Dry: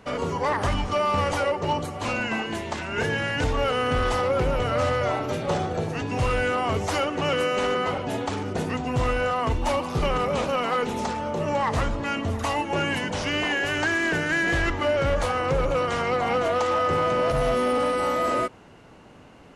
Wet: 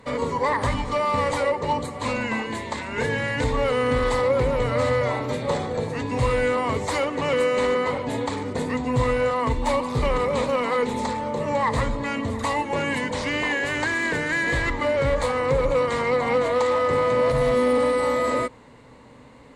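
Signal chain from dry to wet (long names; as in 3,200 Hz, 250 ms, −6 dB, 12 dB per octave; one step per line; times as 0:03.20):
EQ curve with evenly spaced ripples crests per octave 1, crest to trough 9 dB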